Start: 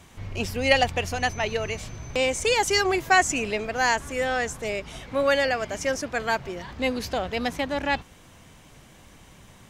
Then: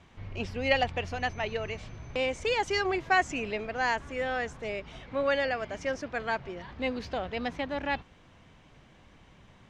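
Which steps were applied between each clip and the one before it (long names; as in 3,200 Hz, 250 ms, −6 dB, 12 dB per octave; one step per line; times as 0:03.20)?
low-pass filter 3,800 Hz 12 dB per octave
level −5.5 dB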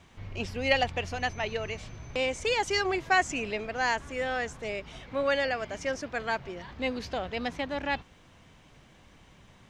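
high-shelf EQ 6,200 Hz +10.5 dB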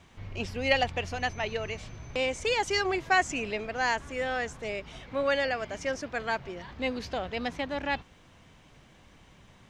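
no processing that can be heard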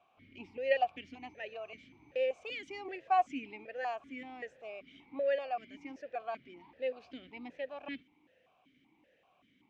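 formant filter that steps through the vowels 5.2 Hz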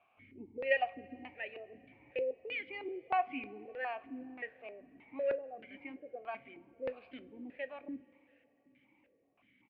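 auto-filter low-pass square 1.6 Hz 390–2,300 Hz
coupled-rooms reverb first 0.21 s, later 3.8 s, from −22 dB, DRR 11 dB
downsampling to 11,025 Hz
level −3.5 dB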